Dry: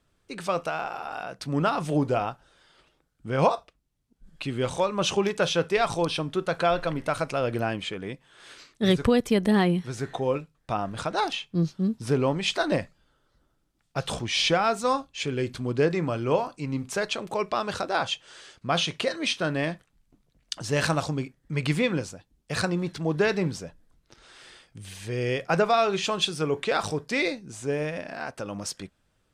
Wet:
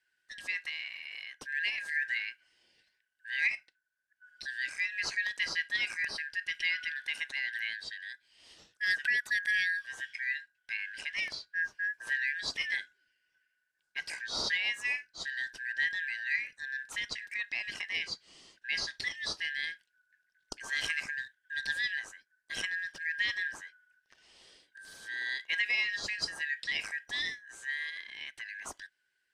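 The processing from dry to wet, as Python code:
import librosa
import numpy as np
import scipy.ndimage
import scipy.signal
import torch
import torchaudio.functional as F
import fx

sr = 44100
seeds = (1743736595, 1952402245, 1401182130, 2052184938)

y = fx.band_shuffle(x, sr, order='4123')
y = y * librosa.db_to_amplitude(-9.0)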